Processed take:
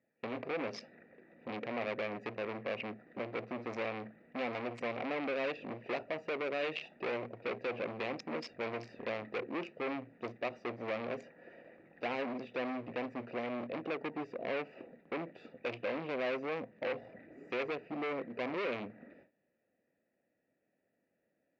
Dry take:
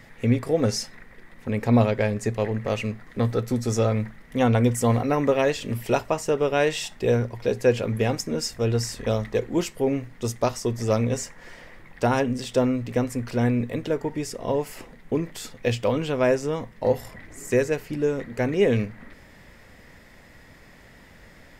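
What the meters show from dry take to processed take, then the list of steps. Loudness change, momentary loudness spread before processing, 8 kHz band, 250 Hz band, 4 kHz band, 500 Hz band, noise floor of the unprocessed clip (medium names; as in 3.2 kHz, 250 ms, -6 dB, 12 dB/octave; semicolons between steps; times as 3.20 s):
-14.5 dB, 8 LU, under -30 dB, -16.5 dB, -13.0 dB, -14.0 dB, -50 dBFS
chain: local Wiener filter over 41 samples; gate with hold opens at -39 dBFS; peak limiter -19 dBFS, peak gain reduction 11 dB; hard clipper -32.5 dBFS, distortion -6 dB; cabinet simulation 420–3800 Hz, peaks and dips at 430 Hz -5 dB, 880 Hz -6 dB, 1.5 kHz -6 dB, 2.3 kHz +7 dB, 3.4 kHz -5 dB; trim +4 dB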